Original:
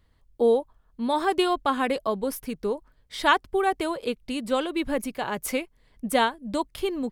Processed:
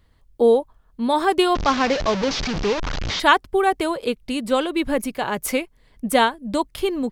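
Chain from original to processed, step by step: 1.55–3.20 s: one-bit delta coder 32 kbps, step -23.5 dBFS; trim +5 dB

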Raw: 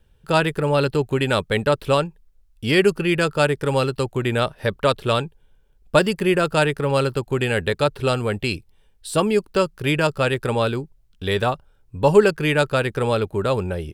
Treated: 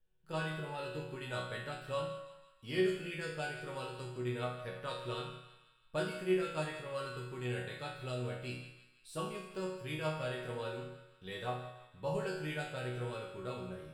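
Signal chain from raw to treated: chord resonator B2 major, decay 0.67 s; two-band feedback delay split 1.1 kHz, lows 88 ms, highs 165 ms, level -12 dB; trim -1 dB

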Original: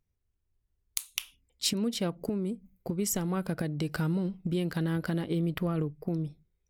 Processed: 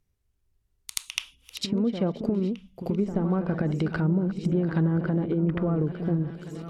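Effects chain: backward echo that repeats 688 ms, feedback 63%, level -13.5 dB; low-pass that closes with the level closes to 890 Hz, closed at -25.5 dBFS; reverse echo 80 ms -9.5 dB; trim +5 dB

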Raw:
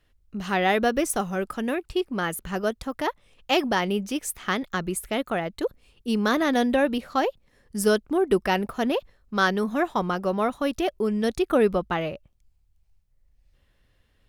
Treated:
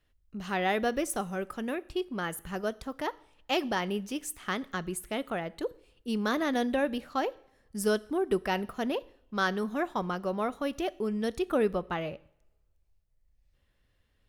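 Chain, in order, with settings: two-slope reverb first 0.63 s, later 1.9 s, from -24 dB, DRR 18.5 dB; trim -6.5 dB

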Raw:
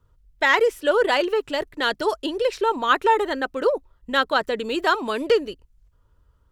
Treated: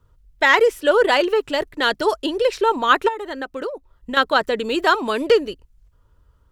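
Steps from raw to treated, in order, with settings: 3.08–4.17 s: compression 10:1, threshold -28 dBFS, peak gain reduction 14.5 dB; trim +3.5 dB

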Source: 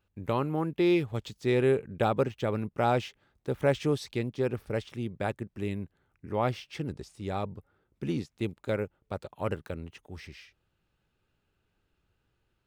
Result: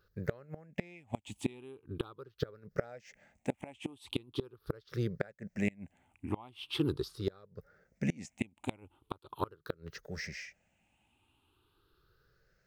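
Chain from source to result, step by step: drifting ripple filter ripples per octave 0.59, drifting +0.41 Hz, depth 16 dB; bass shelf 300 Hz -4.5 dB; inverted gate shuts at -22 dBFS, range -28 dB; trim +3 dB

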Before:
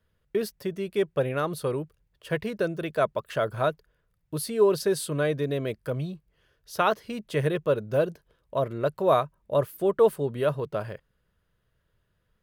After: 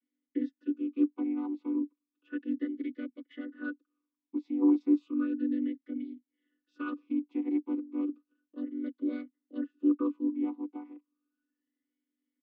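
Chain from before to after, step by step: vocoder on a held chord minor triad, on B3; comb 4 ms, depth 47%; talking filter i-u 0.33 Hz; trim +1.5 dB

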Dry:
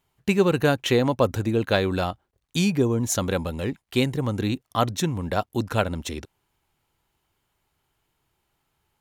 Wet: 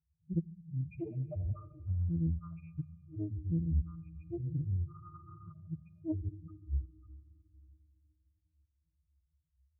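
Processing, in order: bass shelf 410 Hz +12 dB; peak limiter -7.5 dBFS, peak gain reduction 7 dB; pitch-class resonator E, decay 0.18 s; chorus voices 6, 0.24 Hz, delay 28 ms, depth 1.3 ms; rotary cabinet horn 0.65 Hz, later 6.3 Hz, at 3.21 s; inverted gate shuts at -22 dBFS, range -35 dB; repeats whose band climbs or falls 196 ms, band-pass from 1.3 kHz, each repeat 1.4 oct, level -1 dB; loudest bins only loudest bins 2; on a send at -15 dB: reverberation RT60 2.2 s, pre-delay 5 ms; on the sum: speed mistake 48 kHz file played as 44.1 kHz; spectral freeze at 4.95 s, 0.54 s; loudspeaker Doppler distortion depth 0.68 ms; trim +2 dB

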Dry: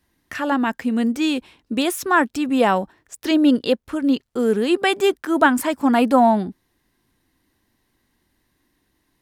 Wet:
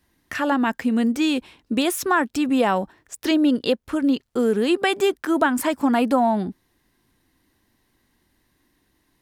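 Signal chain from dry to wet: compression 3:1, threshold -18 dBFS, peak gain reduction 7 dB; trim +1.5 dB

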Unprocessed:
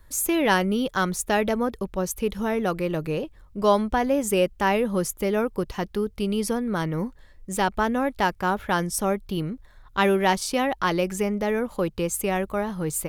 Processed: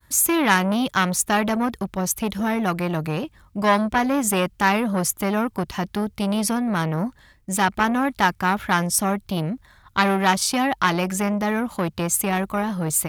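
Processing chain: high-pass 77 Hz 12 dB/octave; expander -56 dBFS; peaking EQ 480 Hz -10 dB 0.79 oct; transformer saturation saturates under 1.6 kHz; trim +7.5 dB

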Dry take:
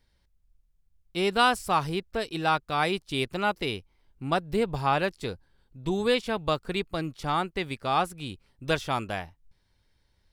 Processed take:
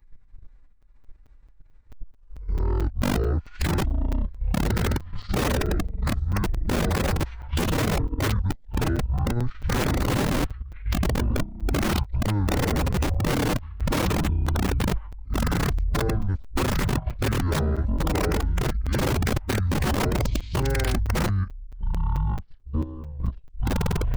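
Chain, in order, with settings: reverse the whole clip; compression 2.5:1, threshold -33 dBFS, peak gain reduction 11.5 dB; bass shelf 270 Hz +11.5 dB; speed mistake 78 rpm record played at 33 rpm; ever faster or slower copies 192 ms, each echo -6 st, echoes 2; bass shelf 120 Hz +12 dB; integer overflow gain 15 dB; level held to a coarse grid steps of 13 dB; formant-preserving pitch shift +4 st; band-stop 680 Hz, Q 12; crackling interface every 0.22 s, samples 256, zero, from 0.82 s; trim +4 dB

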